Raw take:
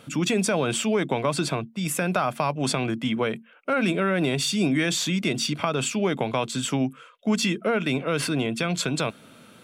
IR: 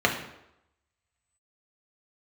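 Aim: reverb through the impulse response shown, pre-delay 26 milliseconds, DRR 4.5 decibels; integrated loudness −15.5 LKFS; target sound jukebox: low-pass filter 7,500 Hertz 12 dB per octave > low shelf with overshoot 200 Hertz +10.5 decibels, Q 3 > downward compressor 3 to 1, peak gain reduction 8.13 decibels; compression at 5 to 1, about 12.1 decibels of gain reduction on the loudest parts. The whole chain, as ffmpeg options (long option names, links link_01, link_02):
-filter_complex "[0:a]acompressor=threshold=-33dB:ratio=5,asplit=2[link_01][link_02];[1:a]atrim=start_sample=2205,adelay=26[link_03];[link_02][link_03]afir=irnorm=-1:irlink=0,volume=-20.5dB[link_04];[link_01][link_04]amix=inputs=2:normalize=0,lowpass=7500,lowshelf=frequency=200:width_type=q:width=3:gain=10.5,acompressor=threshold=-28dB:ratio=3,volume=16.5dB"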